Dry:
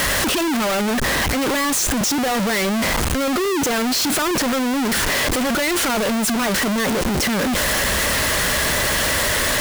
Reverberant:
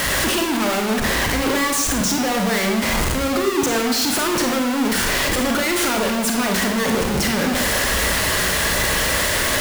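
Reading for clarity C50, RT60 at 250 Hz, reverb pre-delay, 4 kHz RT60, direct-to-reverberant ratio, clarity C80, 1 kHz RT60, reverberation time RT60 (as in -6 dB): 4.5 dB, 0.75 s, 29 ms, 0.65 s, 2.0 dB, 7.5 dB, 0.80 s, 0.80 s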